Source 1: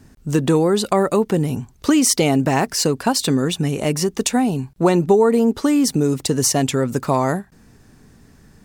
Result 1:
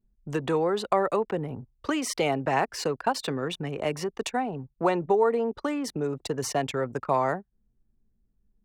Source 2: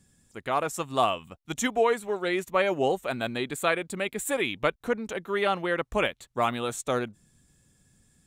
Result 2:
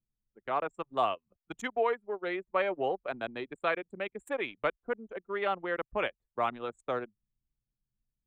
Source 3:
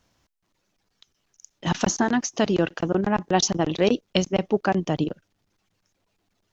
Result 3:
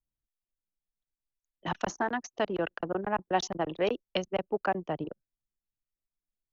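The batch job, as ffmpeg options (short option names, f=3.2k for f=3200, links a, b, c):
-filter_complex "[0:a]acrossover=split=160|380|1600[a][b][c][d];[b]acompressor=threshold=-35dB:ratio=12[e];[a][e][c][d]amix=inputs=4:normalize=0,anlmdn=63.1,bass=f=250:g=-7,treble=f=4k:g=-14,volume=-4dB"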